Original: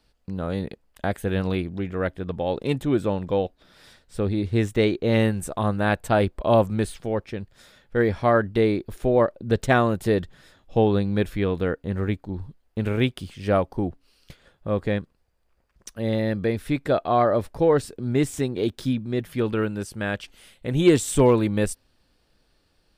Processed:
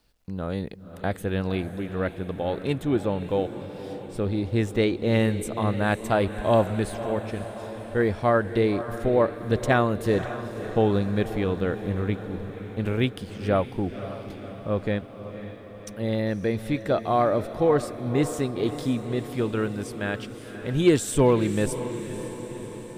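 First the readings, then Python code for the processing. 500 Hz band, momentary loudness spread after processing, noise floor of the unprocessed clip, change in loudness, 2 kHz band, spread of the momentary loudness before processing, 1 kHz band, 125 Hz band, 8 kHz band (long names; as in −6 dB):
−1.5 dB, 13 LU, −67 dBFS, −2.0 dB, −1.5 dB, 11 LU, −1.5 dB, −1.5 dB, −1.5 dB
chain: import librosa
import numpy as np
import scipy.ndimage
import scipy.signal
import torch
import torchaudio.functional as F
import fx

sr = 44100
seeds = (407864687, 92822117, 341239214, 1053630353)

y = fx.echo_diffused(x, sr, ms=537, feedback_pct=63, wet_db=-11.5)
y = fx.quant_dither(y, sr, seeds[0], bits=12, dither='none')
y = F.gain(torch.from_numpy(y), -2.0).numpy()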